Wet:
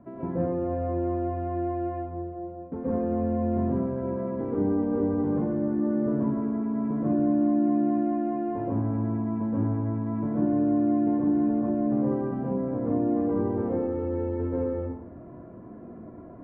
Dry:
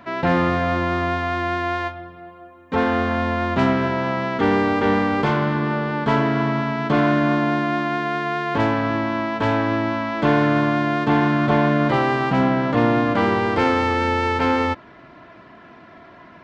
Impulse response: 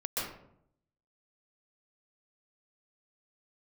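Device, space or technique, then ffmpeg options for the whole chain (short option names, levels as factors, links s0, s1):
television next door: -filter_complex "[0:a]acompressor=threshold=0.0447:ratio=6,lowpass=420[s0];[1:a]atrim=start_sample=2205[s1];[s0][s1]afir=irnorm=-1:irlink=0"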